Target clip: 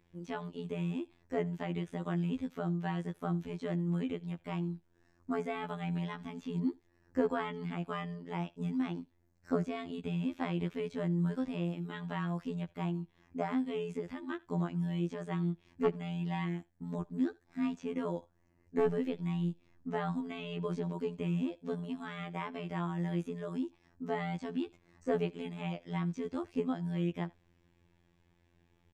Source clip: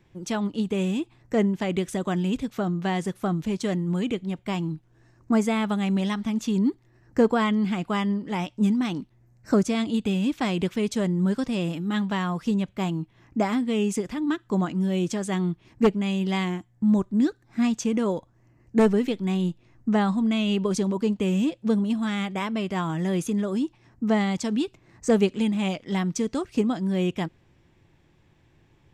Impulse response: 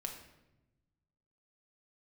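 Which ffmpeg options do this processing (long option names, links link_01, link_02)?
-filter_complex "[0:a]afftfilt=real='hypot(re,im)*cos(PI*b)':imag='0':win_size=2048:overlap=0.75,asplit=2[link_01][link_02];[link_02]adelay=80,highpass=300,lowpass=3400,asoftclip=type=hard:threshold=-16.5dB,volume=-25dB[link_03];[link_01][link_03]amix=inputs=2:normalize=0,acrossover=split=3000[link_04][link_05];[link_05]acompressor=threshold=-55dB:ratio=4:attack=1:release=60[link_06];[link_04][link_06]amix=inputs=2:normalize=0,volume=-6dB"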